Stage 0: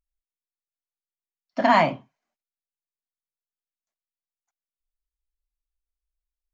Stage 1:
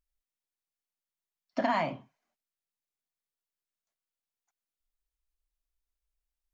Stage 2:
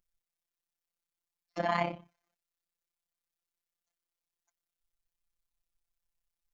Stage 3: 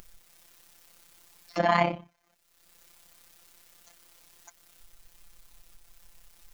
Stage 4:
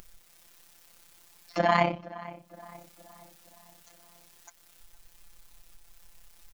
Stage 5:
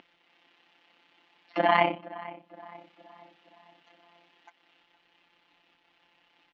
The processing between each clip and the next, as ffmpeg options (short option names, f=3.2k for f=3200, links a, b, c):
-af "acompressor=threshold=-27dB:ratio=4"
-af "tremolo=f=33:d=0.889,afftfilt=real='hypot(re,im)*cos(PI*b)':imag='0':win_size=1024:overlap=0.75,volume=7dB"
-af "acompressor=mode=upward:threshold=-39dB:ratio=2.5,volume=7dB"
-filter_complex "[0:a]asplit=2[a][b];[b]adelay=469,lowpass=f=2.2k:p=1,volume=-17.5dB,asplit=2[c][d];[d]adelay=469,lowpass=f=2.2k:p=1,volume=0.53,asplit=2[e][f];[f]adelay=469,lowpass=f=2.2k:p=1,volume=0.53,asplit=2[g][h];[h]adelay=469,lowpass=f=2.2k:p=1,volume=0.53,asplit=2[i][j];[j]adelay=469,lowpass=f=2.2k:p=1,volume=0.53[k];[a][c][e][g][i][k]amix=inputs=6:normalize=0"
-af "highpass=230,equalizer=f=290:t=q:w=4:g=10,equalizer=f=830:t=q:w=4:g=6,equalizer=f=2k:t=q:w=4:g=4,equalizer=f=2.9k:t=q:w=4:g=7,lowpass=f=3.5k:w=0.5412,lowpass=f=3.5k:w=1.3066,volume=-1.5dB"